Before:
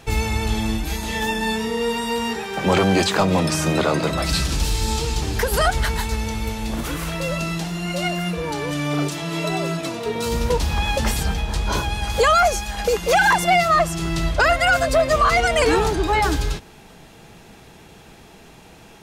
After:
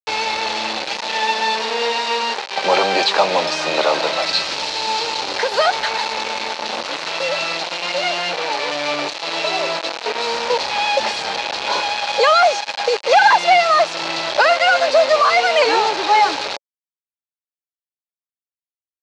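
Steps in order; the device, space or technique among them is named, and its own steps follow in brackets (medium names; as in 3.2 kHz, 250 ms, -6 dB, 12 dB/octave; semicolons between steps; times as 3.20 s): hand-held game console (bit crusher 4-bit; cabinet simulation 480–5600 Hz, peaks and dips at 560 Hz +7 dB, 860 Hz +7 dB, 2.5 kHz +4 dB, 4.2 kHz +7 dB); trim +1 dB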